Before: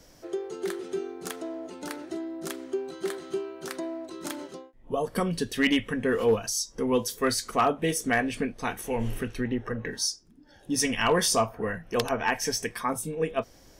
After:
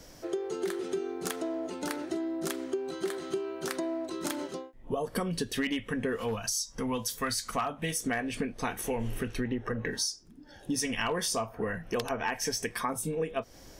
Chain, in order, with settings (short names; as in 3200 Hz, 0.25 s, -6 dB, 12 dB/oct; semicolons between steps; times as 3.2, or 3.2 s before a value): 6.16–8.03 bell 390 Hz -11.5 dB 0.96 oct; compressor 6:1, threshold -32 dBFS, peak gain reduction 12.5 dB; gain +3.5 dB